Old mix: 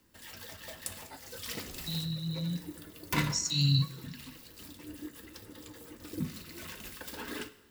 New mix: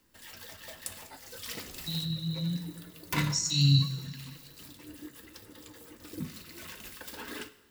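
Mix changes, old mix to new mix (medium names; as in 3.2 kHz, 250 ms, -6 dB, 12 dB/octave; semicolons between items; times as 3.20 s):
speech: send +11.0 dB; background: add bass shelf 450 Hz -3.5 dB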